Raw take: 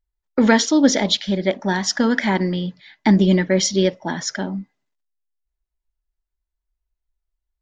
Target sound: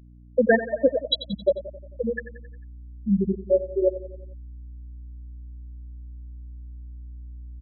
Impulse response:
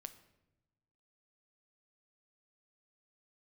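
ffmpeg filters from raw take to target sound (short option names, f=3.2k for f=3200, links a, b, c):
-filter_complex "[0:a]aecho=1:1:1.8:0.68[a];[1:a]atrim=start_sample=2205,atrim=end_sample=3969,asetrate=38367,aresample=44100[b];[a][b]afir=irnorm=-1:irlink=0,afftfilt=real='re*gte(hypot(re,im),0.631)':imag='im*gte(hypot(re,im),0.631)':win_size=1024:overlap=0.75,aecho=1:1:89|178|267|356|445:0.2|0.108|0.0582|0.0314|0.017,aeval=exprs='val(0)+0.00282*(sin(2*PI*60*n/s)+sin(2*PI*2*60*n/s)/2+sin(2*PI*3*60*n/s)/3+sin(2*PI*4*60*n/s)/4+sin(2*PI*5*60*n/s)/5)':c=same,asubboost=boost=10:cutoff=51,volume=4dB"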